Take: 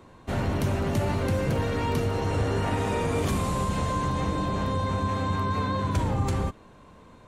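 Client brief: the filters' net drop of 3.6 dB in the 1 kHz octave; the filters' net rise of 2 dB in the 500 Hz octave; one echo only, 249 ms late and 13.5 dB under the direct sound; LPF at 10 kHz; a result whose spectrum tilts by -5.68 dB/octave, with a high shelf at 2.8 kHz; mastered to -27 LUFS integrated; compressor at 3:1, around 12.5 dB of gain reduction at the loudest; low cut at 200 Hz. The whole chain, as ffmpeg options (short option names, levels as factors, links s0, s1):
-af "highpass=200,lowpass=10000,equalizer=f=500:t=o:g=3.5,equalizer=f=1000:t=o:g=-4,highshelf=f=2800:g=-6.5,acompressor=threshold=0.00794:ratio=3,aecho=1:1:249:0.211,volume=5.01"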